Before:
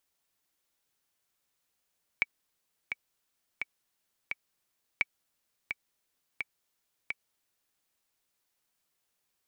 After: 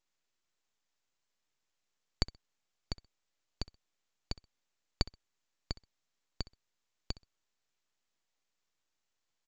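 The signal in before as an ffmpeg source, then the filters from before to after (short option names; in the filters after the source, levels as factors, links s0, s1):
-f lavfi -i "aevalsrc='pow(10,(-12-7.5*gte(mod(t,4*60/86),60/86))/20)*sin(2*PI*2280*mod(t,60/86))*exp(-6.91*mod(t,60/86)/0.03)':d=5.58:s=44100"
-af "aresample=16000,aeval=exprs='abs(val(0))':c=same,aresample=44100,aecho=1:1:64|128:0.106|0.0233"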